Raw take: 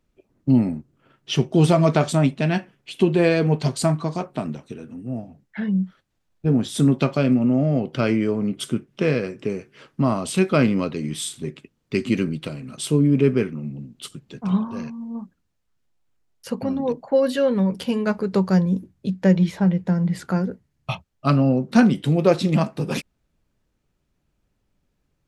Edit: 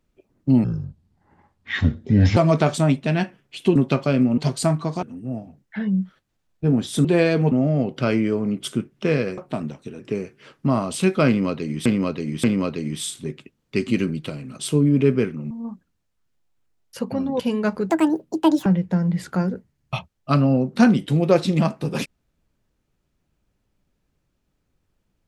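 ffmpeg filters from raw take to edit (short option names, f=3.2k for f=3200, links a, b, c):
-filter_complex "[0:a]asplit=16[a][b][c][d][e][f][g][h][i][j][k][l][m][n][o][p];[a]atrim=end=0.644[q];[b]atrim=start=0.64:end=1.71,asetpts=PTS-STARTPTS,asetrate=27342,aresample=44100,atrim=end_sample=76108,asetpts=PTS-STARTPTS[r];[c]atrim=start=1.706:end=3.102[s];[d]atrim=start=6.858:end=7.482[t];[e]atrim=start=3.568:end=4.222[u];[f]atrim=start=4.838:end=6.862[v];[g]atrim=start=3.098:end=3.572[w];[h]atrim=start=7.478:end=9.342[x];[i]atrim=start=4.218:end=4.842[y];[j]atrim=start=9.338:end=11.202[z];[k]atrim=start=10.618:end=11.202[aa];[l]atrim=start=10.618:end=13.692[ab];[m]atrim=start=15.008:end=16.902[ac];[n]atrim=start=17.818:end=18.324[ad];[o]atrim=start=18.32:end=19.62,asetpts=PTS-STARTPTS,asetrate=74970,aresample=44100[ae];[p]atrim=start=19.616[af];[q][r]acrossfade=d=0.004:c1=hsin:c2=hsin[ag];[ag][s]acrossfade=d=0.004:c1=hsin:c2=hsin[ah];[ah][t]acrossfade=d=0.004:c1=hsin:c2=hsin[ai];[ai][u]acrossfade=d=0.004:c1=hsin:c2=hsin[aj];[aj][v]acrossfade=d=0.004:c1=hsin:c2=hsin[ak];[ak][w]acrossfade=d=0.004:c1=hsin:c2=hsin[al];[al][x]acrossfade=d=0.004:c1=hsin:c2=hsin[am];[am][y]acrossfade=d=0.004:c1=hsin:c2=hsin[an];[an][z]acrossfade=d=0.004:c1=hsin:c2=hsin[ao];[ao][aa]acrossfade=d=0.004:c1=hsin:c2=hsin[ap];[ap][ab]acrossfade=d=0.004:c1=hsin:c2=hsin[aq];[aq][ac]acrossfade=d=0.004:c1=hsin:c2=hsin[ar];[ar][ad]acrossfade=d=0.004:c1=hsin:c2=hsin[as];[as][ae]acrossfade=d=0.004:c1=hsin:c2=hsin[at];[at][af]acrossfade=d=0.004:c1=hsin:c2=hsin"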